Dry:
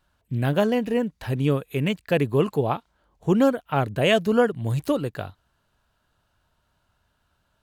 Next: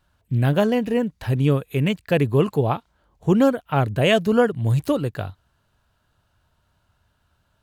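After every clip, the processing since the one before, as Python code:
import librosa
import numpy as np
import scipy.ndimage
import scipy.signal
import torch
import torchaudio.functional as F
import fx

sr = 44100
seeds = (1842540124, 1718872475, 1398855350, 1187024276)

y = fx.peak_eq(x, sr, hz=95.0, db=5.5, octaves=1.3)
y = F.gain(torch.from_numpy(y), 1.5).numpy()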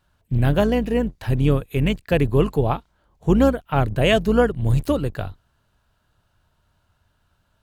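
y = fx.octave_divider(x, sr, octaves=2, level_db=-5.0)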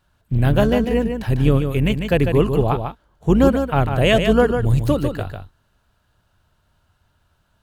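y = x + 10.0 ** (-6.5 / 20.0) * np.pad(x, (int(148 * sr / 1000.0), 0))[:len(x)]
y = F.gain(torch.from_numpy(y), 1.5).numpy()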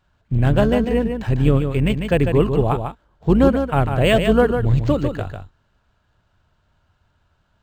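y = np.interp(np.arange(len(x)), np.arange(len(x))[::4], x[::4])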